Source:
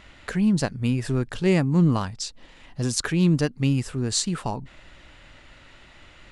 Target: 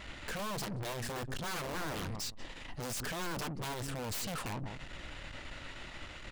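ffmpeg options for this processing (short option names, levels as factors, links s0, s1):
-filter_complex "[0:a]asplit=2[s0][s1];[s1]adelay=181,lowpass=f=920:p=1,volume=0.126,asplit=2[s2][s3];[s3]adelay=181,lowpass=f=920:p=1,volume=0.16[s4];[s0][s2][s4]amix=inputs=3:normalize=0,aeval=exprs='(mod(10.6*val(0)+1,2)-1)/10.6':c=same,aeval=exprs='(tanh(141*val(0)+0.45)-tanh(0.45))/141':c=same,volume=1.88"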